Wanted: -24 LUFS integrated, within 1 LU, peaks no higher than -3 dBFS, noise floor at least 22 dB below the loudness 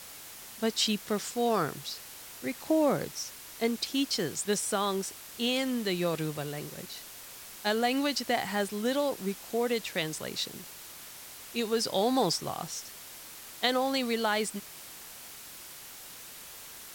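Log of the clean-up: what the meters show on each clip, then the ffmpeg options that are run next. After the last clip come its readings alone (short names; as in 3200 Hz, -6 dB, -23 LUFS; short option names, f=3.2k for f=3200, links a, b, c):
noise floor -47 dBFS; noise floor target -53 dBFS; loudness -30.5 LUFS; peak -11.5 dBFS; loudness target -24.0 LUFS
-> -af "afftdn=nr=6:nf=-47"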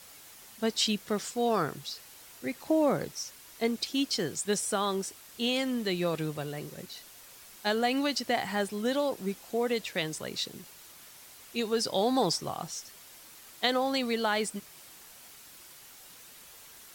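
noise floor -52 dBFS; noise floor target -53 dBFS
-> -af "afftdn=nr=6:nf=-52"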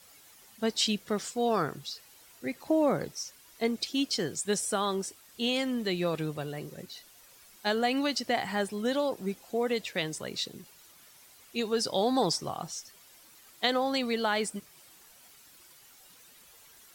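noise floor -57 dBFS; loudness -30.5 LUFS; peak -11.5 dBFS; loudness target -24.0 LUFS
-> -af "volume=6.5dB"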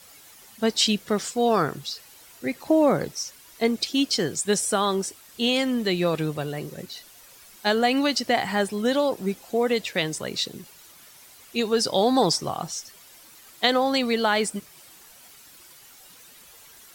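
loudness -24.0 LUFS; peak -5.0 dBFS; noise floor -50 dBFS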